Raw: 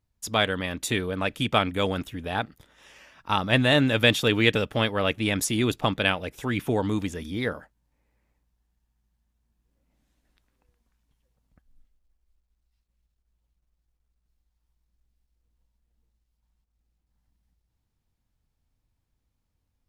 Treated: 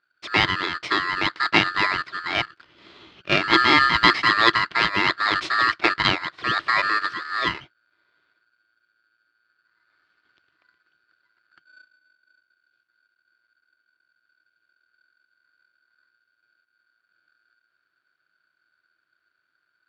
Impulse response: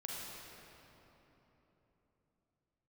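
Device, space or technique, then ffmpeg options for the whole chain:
ring modulator pedal into a guitar cabinet: -af "aeval=exprs='val(0)*sgn(sin(2*PI*1500*n/s))':c=same,highpass=76,equalizer=f=230:t=q:w=4:g=-7,equalizer=f=330:t=q:w=4:g=8,equalizer=f=510:t=q:w=4:g=-5,equalizer=f=840:t=q:w=4:g=-7,equalizer=f=1.6k:t=q:w=4:g=-3,lowpass=f=3.9k:w=0.5412,lowpass=f=3.9k:w=1.3066,volume=6dB"

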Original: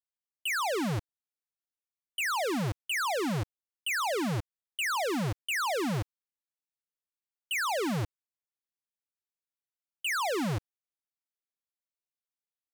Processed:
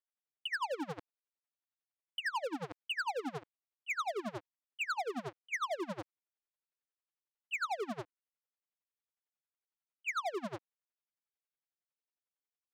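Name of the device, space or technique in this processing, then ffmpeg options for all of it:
helicopter radio: -af "highpass=330,lowpass=2.6k,aeval=exprs='val(0)*pow(10,-26*(0.5-0.5*cos(2*PI*11*n/s))/20)':c=same,asoftclip=type=hard:threshold=-34.5dB,volume=3.5dB"

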